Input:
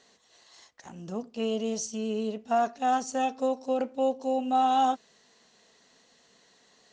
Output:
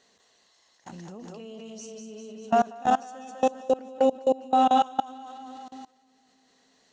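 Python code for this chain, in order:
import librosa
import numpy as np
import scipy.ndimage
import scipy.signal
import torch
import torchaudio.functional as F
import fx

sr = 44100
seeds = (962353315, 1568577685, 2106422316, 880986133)

y = fx.echo_split(x, sr, split_hz=310.0, low_ms=312, high_ms=200, feedback_pct=52, wet_db=-3)
y = fx.level_steps(y, sr, step_db=23)
y = y * 10.0 ** (4.5 / 20.0)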